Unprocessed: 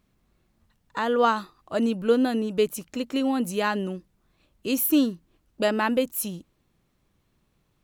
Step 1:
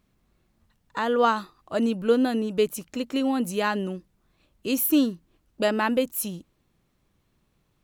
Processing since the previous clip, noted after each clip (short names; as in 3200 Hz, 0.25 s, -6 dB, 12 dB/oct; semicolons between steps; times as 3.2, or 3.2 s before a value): nothing audible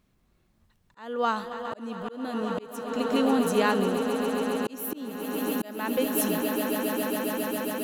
swelling echo 0.136 s, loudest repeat 8, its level -13.5 dB; auto swell 0.552 s